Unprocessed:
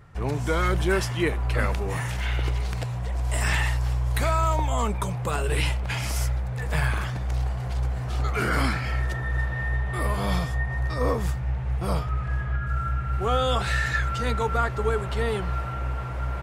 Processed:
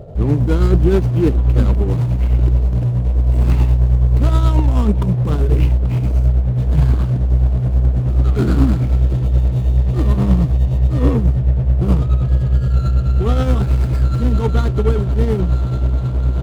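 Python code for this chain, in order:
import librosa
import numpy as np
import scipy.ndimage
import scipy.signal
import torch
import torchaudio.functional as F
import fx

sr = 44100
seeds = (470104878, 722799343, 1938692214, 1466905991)

p1 = scipy.ndimage.median_filter(x, 25, mode='constant')
p2 = fx.low_shelf_res(p1, sr, hz=420.0, db=9.5, q=1.5)
p3 = np.clip(p2, -10.0 ** (-22.0 / 20.0), 10.0 ** (-22.0 / 20.0))
p4 = p2 + (p3 * librosa.db_to_amplitude(-5.0))
p5 = fx.dmg_noise_band(p4, sr, seeds[0], low_hz=390.0, high_hz=680.0, level_db=-41.0)
p6 = p5 * (1.0 - 0.46 / 2.0 + 0.46 / 2.0 * np.cos(2.0 * np.pi * 9.4 * (np.arange(len(p5)) / sr)))
y = p6 * librosa.db_to_amplitude(3.0)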